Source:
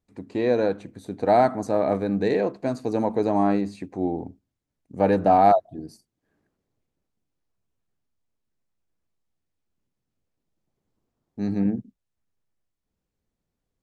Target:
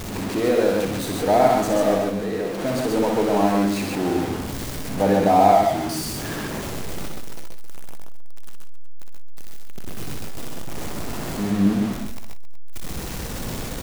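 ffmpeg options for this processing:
ffmpeg -i in.wav -filter_complex "[0:a]aeval=exprs='val(0)+0.5*0.0668*sgn(val(0))':channel_layout=same,asplit=3[link_01][link_02][link_03];[link_01]afade=type=out:start_time=1.97:duration=0.02[link_04];[link_02]acompressor=threshold=-24dB:ratio=6,afade=type=in:start_time=1.97:duration=0.02,afade=type=out:start_time=2.57:duration=0.02[link_05];[link_03]afade=type=in:start_time=2.57:duration=0.02[link_06];[link_04][link_05][link_06]amix=inputs=3:normalize=0,aecho=1:1:61|129|148|181|268|371:0.562|0.631|0.473|0.15|0.158|0.133,volume=-2dB" out.wav

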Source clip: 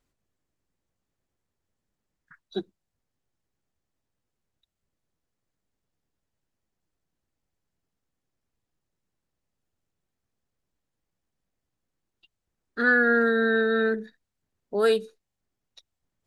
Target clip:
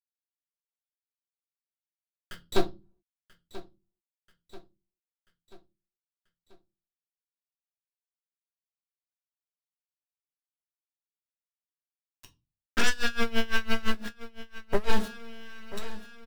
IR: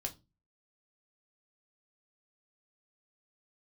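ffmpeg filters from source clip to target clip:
-filter_complex "[0:a]acrossover=split=2800[link_01][link_02];[link_02]acompressor=threshold=-52dB:ratio=4:attack=1:release=60[link_03];[link_01][link_03]amix=inputs=2:normalize=0,highshelf=frequency=2300:gain=8.5,acompressor=threshold=-30dB:ratio=3,aeval=exprs='0.126*(cos(1*acos(clip(val(0)/0.126,-1,1)))-cos(1*PI/2))+0.0501*(cos(5*acos(clip(val(0)/0.126,-1,1)))-cos(5*PI/2))+0.0562*(cos(8*acos(clip(val(0)/0.126,-1,1)))-cos(8*PI/2))':channel_layout=same,aeval=exprs='val(0)*gte(abs(val(0)),0.0188)':channel_layout=same,aecho=1:1:986|1972|2958|3944:0.141|0.072|0.0367|0.0187[link_04];[1:a]atrim=start_sample=2205[link_05];[link_04][link_05]afir=irnorm=-1:irlink=0,asettb=1/sr,asplit=3[link_06][link_07][link_08];[link_06]atrim=end=12.884[link_09];[link_07]atrim=start=12.88:end=14.9,asetpts=PTS-STARTPTS,afade=type=in:duration=0.004:curve=qsin,afade=type=out:start_time=2.016:duration=0.004:curve=qsin,aeval=exprs='val(0)*pow(10,-23*(0.5-0.5*cos(2*PI*5.9*n/s))/20)':channel_layout=same[link_10];[link_08]atrim=start=14.896[link_11];[link_09][link_10]acrossfade=duration=0.004:curve1=hsin:curve2=qsin[link_12];[link_12][link_11]acrossfade=duration=0.004:curve1=qsin:curve2=hsin"

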